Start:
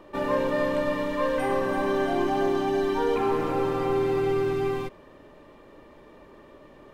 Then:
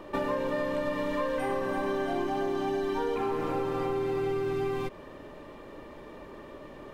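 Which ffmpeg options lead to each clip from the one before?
-af "acompressor=threshold=0.0251:ratio=6,volume=1.68"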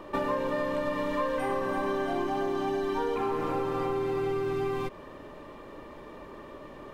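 -af "equalizer=f=1100:t=o:w=0.45:g=3.5"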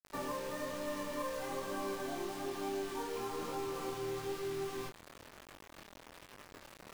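-af "areverse,acompressor=mode=upward:threshold=0.0158:ratio=2.5,areverse,acrusher=bits=5:mix=0:aa=0.000001,flanger=delay=20:depth=5.2:speed=1.1,volume=0.422"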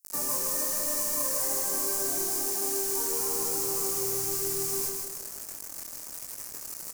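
-filter_complex "[0:a]aexciter=amount=10.8:drive=6.5:freq=5200,asplit=2[s0][s1];[s1]aecho=0:1:155|310|465|620|775|930:0.631|0.278|0.122|0.0537|0.0236|0.0104[s2];[s0][s2]amix=inputs=2:normalize=0"

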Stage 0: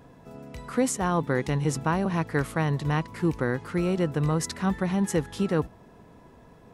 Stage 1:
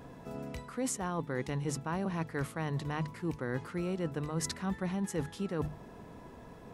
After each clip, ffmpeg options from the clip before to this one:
-af "bandreject=f=50:t=h:w=6,bandreject=f=100:t=h:w=6,bandreject=f=150:t=h:w=6,areverse,acompressor=threshold=0.02:ratio=6,areverse,volume=1.26"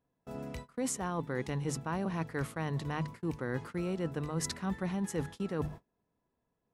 -af "agate=range=0.0251:threshold=0.00708:ratio=16:detection=peak"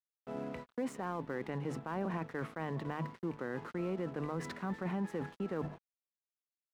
-filter_complex "[0:a]acrossover=split=160 2600:gain=0.126 1 0.0891[s0][s1][s2];[s0][s1][s2]amix=inputs=3:normalize=0,alimiter=level_in=2.37:limit=0.0631:level=0:latency=1:release=24,volume=0.422,aeval=exprs='sgn(val(0))*max(abs(val(0))-0.00119,0)':c=same,volume=1.5"

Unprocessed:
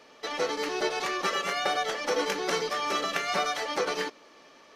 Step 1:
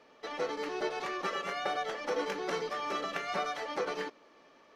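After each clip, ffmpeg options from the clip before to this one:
-af "highshelf=f=3500:g=-10.5,volume=0.596"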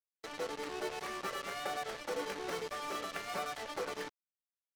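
-af "acrusher=bits=5:mix=0:aa=0.5,volume=0.562"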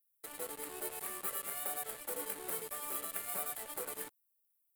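-af "aexciter=amount=13:drive=7.3:freq=8500,volume=0.473"

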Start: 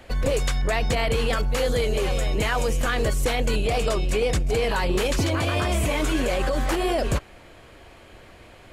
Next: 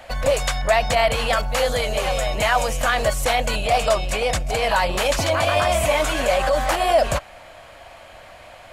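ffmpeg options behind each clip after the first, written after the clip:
-af "lowshelf=f=500:t=q:w=3:g=-7,volume=1.78"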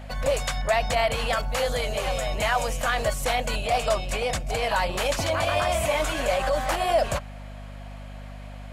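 -af "aeval=exprs='val(0)+0.0224*(sin(2*PI*50*n/s)+sin(2*PI*2*50*n/s)/2+sin(2*PI*3*50*n/s)/3+sin(2*PI*4*50*n/s)/4+sin(2*PI*5*50*n/s)/5)':c=same,volume=0.562"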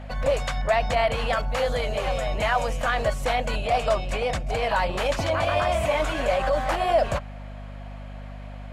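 -af "lowpass=f=2700:p=1,volume=1.19"

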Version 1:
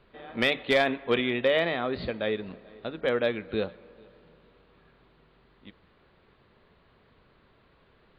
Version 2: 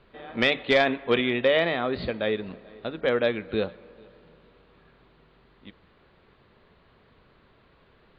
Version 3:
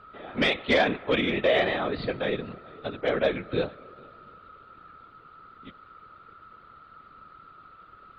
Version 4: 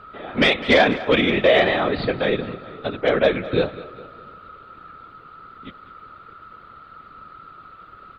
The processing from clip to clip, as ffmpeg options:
-af "lowpass=f=6700:w=0.5412,lowpass=f=6700:w=1.3066,volume=1.33"
-af "acontrast=31,aeval=exprs='val(0)+0.00794*sin(2*PI*1300*n/s)':c=same,afftfilt=real='hypot(re,im)*cos(2*PI*random(0))':imag='hypot(re,im)*sin(2*PI*random(1))':win_size=512:overlap=0.75"
-af "aecho=1:1:204|408|612:0.141|0.0551|0.0215,volume=2.24"

